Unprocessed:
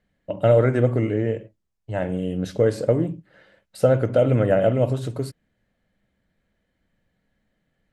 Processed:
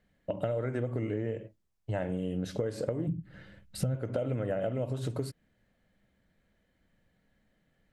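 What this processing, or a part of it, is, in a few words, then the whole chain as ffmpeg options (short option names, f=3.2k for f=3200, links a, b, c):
serial compression, leveller first: -filter_complex "[0:a]asplit=3[a][b][c];[a]afade=t=out:st=3.06:d=0.02[d];[b]asubboost=boost=11.5:cutoff=190,afade=t=in:st=3.06:d=0.02,afade=t=out:st=3.94:d=0.02[e];[c]afade=t=in:st=3.94:d=0.02[f];[d][e][f]amix=inputs=3:normalize=0,acompressor=threshold=-20dB:ratio=2.5,acompressor=threshold=-30dB:ratio=4"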